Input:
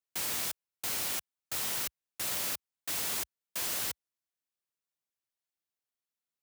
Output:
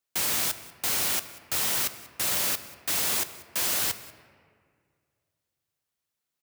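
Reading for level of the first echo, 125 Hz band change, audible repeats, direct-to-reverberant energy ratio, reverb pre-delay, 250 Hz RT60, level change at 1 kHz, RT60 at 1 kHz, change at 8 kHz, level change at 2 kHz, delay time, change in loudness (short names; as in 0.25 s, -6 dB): -21.0 dB, +7.5 dB, 1, 11.5 dB, 5 ms, 2.3 s, +7.5 dB, 1.9 s, +7.0 dB, +7.5 dB, 0.189 s, +7.0 dB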